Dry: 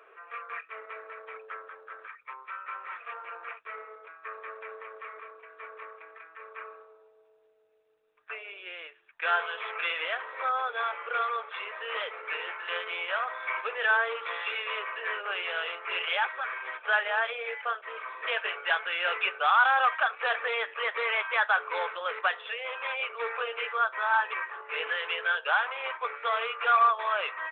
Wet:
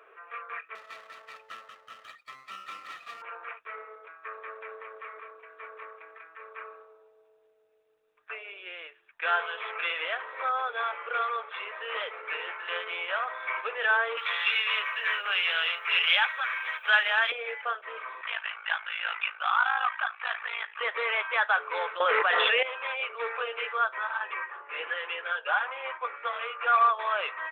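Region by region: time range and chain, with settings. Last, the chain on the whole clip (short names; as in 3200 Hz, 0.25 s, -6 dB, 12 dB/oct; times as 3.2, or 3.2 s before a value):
0.75–3.22 minimum comb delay 1.6 ms + HPF 1000 Hz 6 dB/oct
14.17–17.32 HPF 330 Hz 24 dB/oct + tilt +5.5 dB/oct
18.21–20.81 HPF 810 Hz 24 dB/oct + ring modulator 27 Hz
22–22.63 air absorption 160 m + fast leveller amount 100%
23.98–26.73 LPF 3100 Hz + notch comb 220 Hz
whole clip: dry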